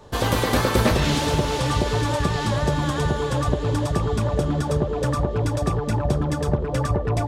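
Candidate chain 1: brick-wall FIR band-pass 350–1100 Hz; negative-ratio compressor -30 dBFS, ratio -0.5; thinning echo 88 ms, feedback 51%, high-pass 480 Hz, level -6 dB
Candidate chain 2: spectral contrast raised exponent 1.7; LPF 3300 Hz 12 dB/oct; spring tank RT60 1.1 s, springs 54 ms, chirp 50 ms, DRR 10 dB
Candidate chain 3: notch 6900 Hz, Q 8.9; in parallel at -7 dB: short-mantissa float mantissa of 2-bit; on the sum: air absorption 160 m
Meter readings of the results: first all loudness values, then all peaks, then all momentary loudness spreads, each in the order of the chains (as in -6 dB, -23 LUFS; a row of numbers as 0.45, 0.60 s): -30.5, -22.5, -20.0 LUFS; -17.0, -6.5, -5.0 dBFS; 3, 3, 3 LU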